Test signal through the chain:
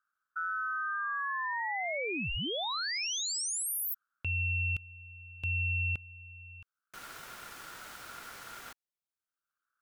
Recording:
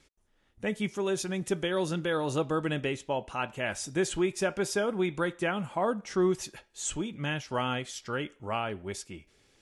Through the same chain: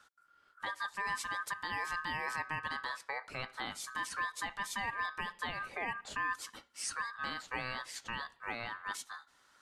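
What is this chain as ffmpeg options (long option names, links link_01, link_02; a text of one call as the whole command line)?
ffmpeg -i in.wav -filter_complex "[0:a]acrossover=split=220[link_01][link_02];[link_01]acompressor=mode=upward:threshold=-57dB:ratio=2.5[link_03];[link_03][link_02]amix=inputs=2:normalize=0,alimiter=level_in=1dB:limit=-24dB:level=0:latency=1:release=297,volume=-1dB,aeval=exprs='val(0)*sin(2*PI*1400*n/s)':channel_layout=same" out.wav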